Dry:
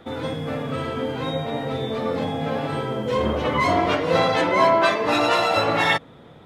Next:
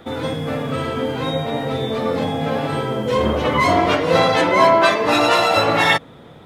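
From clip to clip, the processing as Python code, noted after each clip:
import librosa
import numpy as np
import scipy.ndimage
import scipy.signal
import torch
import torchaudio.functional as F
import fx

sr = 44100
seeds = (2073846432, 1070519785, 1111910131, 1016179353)

y = fx.high_shelf(x, sr, hz=7500.0, db=5.5)
y = y * librosa.db_to_amplitude(4.0)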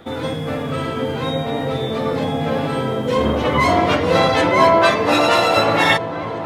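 y = fx.echo_opening(x, sr, ms=329, hz=200, octaves=1, feedback_pct=70, wet_db=-6)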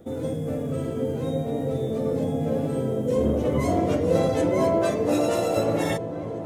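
y = fx.band_shelf(x, sr, hz=2000.0, db=-15.0, octaves=2.9)
y = y * librosa.db_to_amplitude(-3.5)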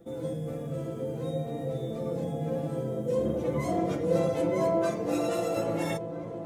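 y = x + 0.63 * np.pad(x, (int(5.9 * sr / 1000.0), 0))[:len(x)]
y = y * librosa.db_to_amplitude(-7.5)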